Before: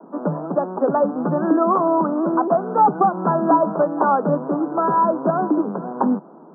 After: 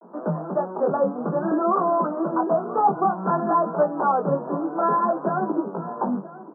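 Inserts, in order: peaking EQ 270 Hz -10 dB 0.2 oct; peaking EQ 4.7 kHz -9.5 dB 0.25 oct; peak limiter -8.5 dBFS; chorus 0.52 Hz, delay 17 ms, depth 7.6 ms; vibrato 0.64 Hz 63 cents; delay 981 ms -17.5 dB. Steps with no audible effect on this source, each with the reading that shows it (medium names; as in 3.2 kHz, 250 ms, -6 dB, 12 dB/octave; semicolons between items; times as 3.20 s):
peaking EQ 4.7 kHz: input has nothing above 1.7 kHz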